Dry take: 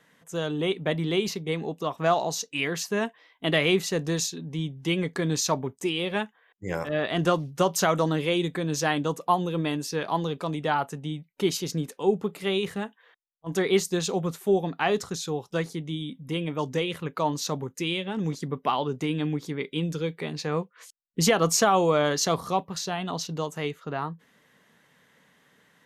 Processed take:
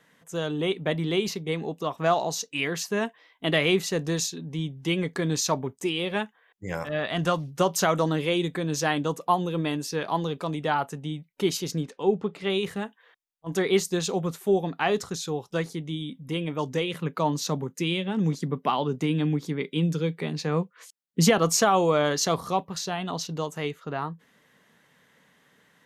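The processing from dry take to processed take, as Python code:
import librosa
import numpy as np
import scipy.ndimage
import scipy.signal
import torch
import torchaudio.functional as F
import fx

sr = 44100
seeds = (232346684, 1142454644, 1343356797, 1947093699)

y = fx.peak_eq(x, sr, hz=370.0, db=-6.5, octaves=0.77, at=(6.66, 7.48))
y = fx.lowpass(y, sr, hz=5100.0, slope=12, at=(11.83, 12.5))
y = fx.highpass_res(y, sr, hz=160.0, q=1.7, at=(16.94, 21.38))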